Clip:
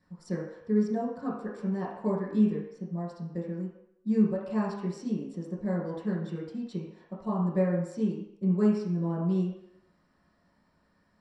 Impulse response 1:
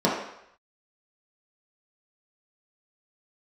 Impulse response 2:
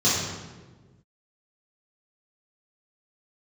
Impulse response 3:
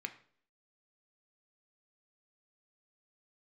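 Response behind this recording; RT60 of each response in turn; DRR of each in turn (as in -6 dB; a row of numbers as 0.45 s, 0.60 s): 1; 0.75 s, 1.4 s, no single decay rate; -6.5 dB, -10.5 dB, 6.5 dB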